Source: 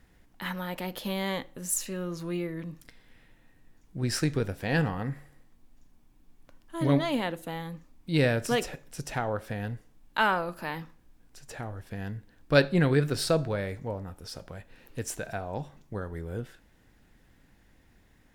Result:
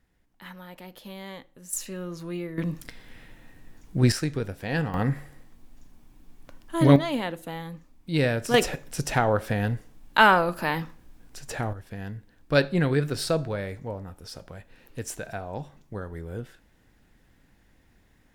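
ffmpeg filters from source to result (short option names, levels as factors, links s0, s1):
-af "asetnsamples=n=441:p=0,asendcmd='1.73 volume volume -1dB;2.58 volume volume 10dB;4.12 volume volume -1dB;4.94 volume volume 8dB;6.96 volume volume 0.5dB;8.54 volume volume 8dB;11.73 volume volume 0dB',volume=0.355"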